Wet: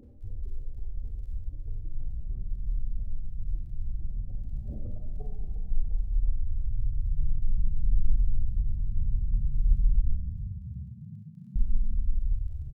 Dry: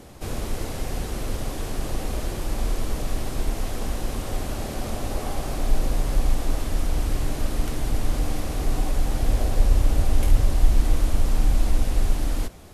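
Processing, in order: spectral contrast raised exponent 3.3; 7.17–8.62 comb 4.8 ms, depth 92%; crackle 18/s -48 dBFS; 10.11–11.56 ladder high-pass 500 Hz, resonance 25%; frequency-shifting echo 0.352 s, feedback 59%, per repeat +31 Hz, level -13 dB; Schroeder reverb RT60 0.75 s, combs from 29 ms, DRR 1 dB; gain -6.5 dB

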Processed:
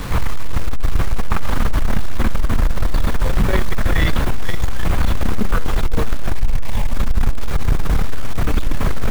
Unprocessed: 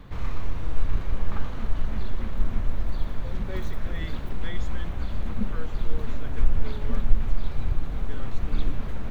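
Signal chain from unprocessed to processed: bell 1400 Hz +4 dB 1.9 oct; in parallel at +2 dB: negative-ratio compressor -21 dBFS, ratio -0.5; on the sum: soft clip -17 dBFS, distortion -12 dB; 6.32–6.97 fixed phaser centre 1400 Hz, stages 6; bit-crush 7-bit; on a send: darkening echo 0.52 s, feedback 73%, low-pass 2700 Hz, level -23 dB; on the sum: gain +8.5 dB

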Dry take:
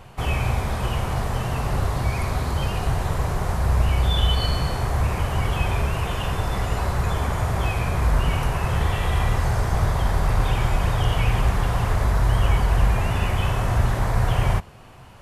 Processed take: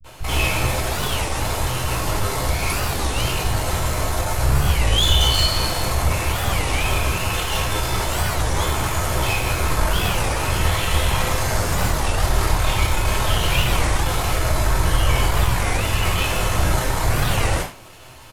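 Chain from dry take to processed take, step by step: half-wave rectifier; on a send: tape echo 0.132 s, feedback 49%, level -23 dB, low-pass 2300 Hz; on the sum: tempo 0.83×; high shelf 2900 Hz +10.5 dB; bands offset in time lows, highs 40 ms, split 150 Hz; non-linear reverb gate 0.13 s falling, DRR -5.5 dB; record warp 33 1/3 rpm, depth 250 cents

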